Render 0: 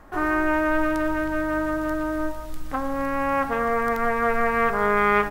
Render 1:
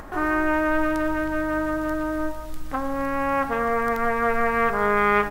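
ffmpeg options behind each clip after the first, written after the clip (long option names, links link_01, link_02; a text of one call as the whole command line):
ffmpeg -i in.wav -af "acompressor=mode=upward:threshold=-31dB:ratio=2.5" out.wav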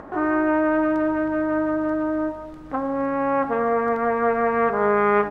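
ffmpeg -i in.wav -af "bandpass=frequency=410:width_type=q:width=0.54:csg=0,volume=4dB" out.wav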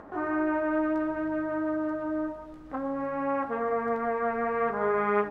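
ffmpeg -i in.wav -af "flanger=delay=9.1:depth=7.8:regen=-37:speed=0.57:shape=triangular,volume=-3.5dB" out.wav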